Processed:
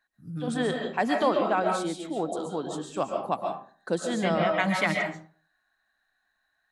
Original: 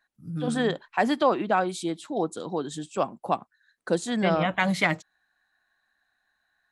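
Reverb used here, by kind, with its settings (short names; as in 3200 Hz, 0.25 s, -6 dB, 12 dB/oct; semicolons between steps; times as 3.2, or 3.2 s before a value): digital reverb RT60 0.45 s, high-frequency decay 0.6×, pre-delay 95 ms, DRR 2 dB; gain -3 dB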